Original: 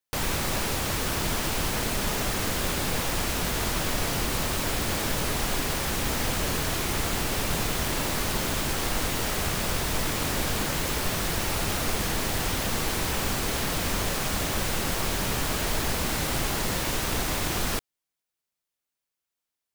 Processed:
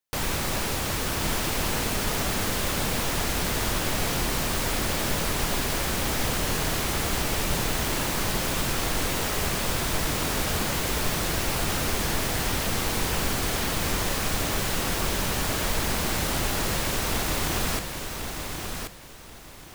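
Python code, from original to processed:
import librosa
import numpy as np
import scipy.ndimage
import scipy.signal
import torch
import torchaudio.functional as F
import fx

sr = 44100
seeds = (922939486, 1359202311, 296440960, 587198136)

y = fx.echo_feedback(x, sr, ms=1082, feedback_pct=26, wet_db=-6.0)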